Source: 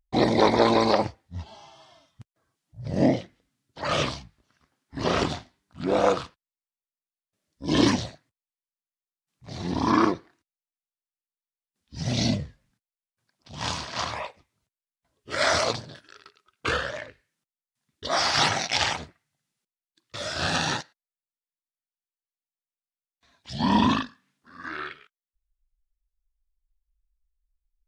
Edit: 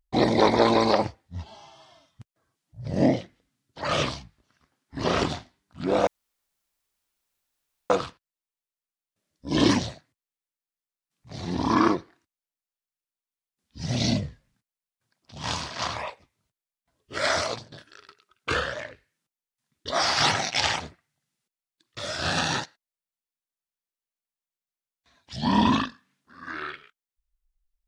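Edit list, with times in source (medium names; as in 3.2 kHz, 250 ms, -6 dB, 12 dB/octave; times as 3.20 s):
6.07 s: insert room tone 1.83 s
15.32–15.89 s: fade out, to -11 dB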